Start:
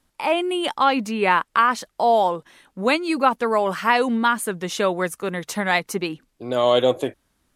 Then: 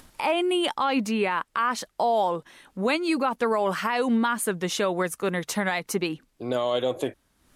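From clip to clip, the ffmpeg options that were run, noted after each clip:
-af "alimiter=limit=-15dB:level=0:latency=1:release=102,acompressor=mode=upward:threshold=-39dB:ratio=2.5"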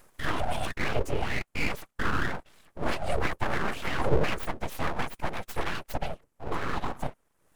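-af "equalizer=f=125:t=o:w=1:g=-8,equalizer=f=250:t=o:w=1:g=10,equalizer=f=1k:t=o:w=1:g=6,equalizer=f=4k:t=o:w=1:g=-10,equalizer=f=8k:t=o:w=1:g=3,afftfilt=real='hypot(re,im)*cos(2*PI*random(0))':imag='hypot(re,im)*sin(2*PI*random(1))':win_size=512:overlap=0.75,aeval=exprs='abs(val(0))':c=same"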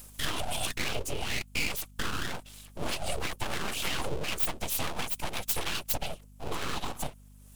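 -af "acompressor=threshold=-28dB:ratio=5,aexciter=amount=3.3:drive=6.3:freq=2.6k,aeval=exprs='val(0)+0.00251*(sin(2*PI*50*n/s)+sin(2*PI*2*50*n/s)/2+sin(2*PI*3*50*n/s)/3+sin(2*PI*4*50*n/s)/4+sin(2*PI*5*50*n/s)/5)':c=same"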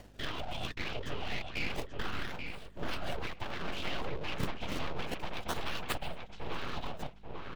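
-filter_complex "[0:a]acrossover=split=5000[a][b];[a]asplit=2[c][d];[d]adelay=835,lowpass=f=2.4k:p=1,volume=-3.5dB,asplit=2[e][f];[f]adelay=835,lowpass=f=2.4k:p=1,volume=0.3,asplit=2[g][h];[h]adelay=835,lowpass=f=2.4k:p=1,volume=0.3,asplit=2[i][j];[j]adelay=835,lowpass=f=2.4k:p=1,volume=0.3[k];[c][e][g][i][k]amix=inputs=5:normalize=0[l];[b]acrusher=samples=34:mix=1:aa=0.000001:lfo=1:lforange=54.4:lforate=0.29[m];[l][m]amix=inputs=2:normalize=0,volume=-5.5dB"

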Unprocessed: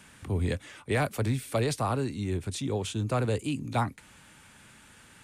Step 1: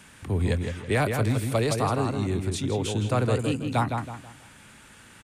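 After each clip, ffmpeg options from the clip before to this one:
-filter_complex "[0:a]asplit=2[a][b];[b]adelay=162,lowpass=f=3.2k:p=1,volume=-5dB,asplit=2[c][d];[d]adelay=162,lowpass=f=3.2k:p=1,volume=0.35,asplit=2[e][f];[f]adelay=162,lowpass=f=3.2k:p=1,volume=0.35,asplit=2[g][h];[h]adelay=162,lowpass=f=3.2k:p=1,volume=0.35[i];[a][c][e][g][i]amix=inputs=5:normalize=0,volume=3dB"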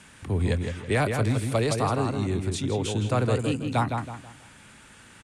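-af "lowpass=f=11k:w=0.5412,lowpass=f=11k:w=1.3066"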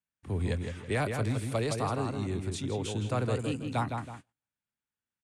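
-af "agate=range=-40dB:threshold=-39dB:ratio=16:detection=peak,volume=-6dB"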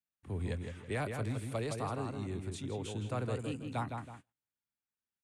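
-af "equalizer=f=5.2k:t=o:w=0.77:g=-3.5,volume=-6dB"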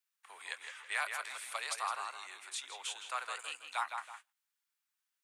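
-af "highpass=f=1k:w=0.5412,highpass=f=1k:w=1.3066,volume=7.5dB"

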